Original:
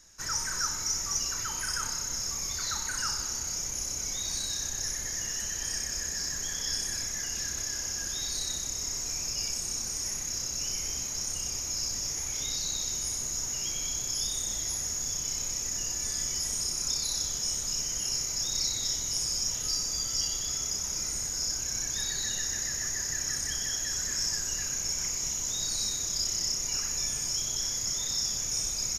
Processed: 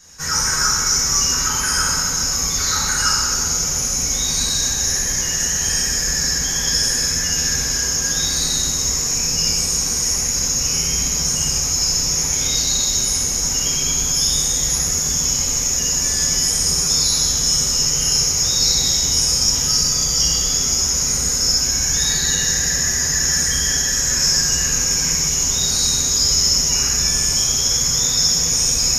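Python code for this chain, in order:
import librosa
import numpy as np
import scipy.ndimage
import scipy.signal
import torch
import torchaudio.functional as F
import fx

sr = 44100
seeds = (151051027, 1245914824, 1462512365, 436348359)

y = fx.rev_fdn(x, sr, rt60_s=1.5, lf_ratio=1.25, hf_ratio=0.7, size_ms=37.0, drr_db=-9.0)
y = y * librosa.db_to_amplitude(5.0)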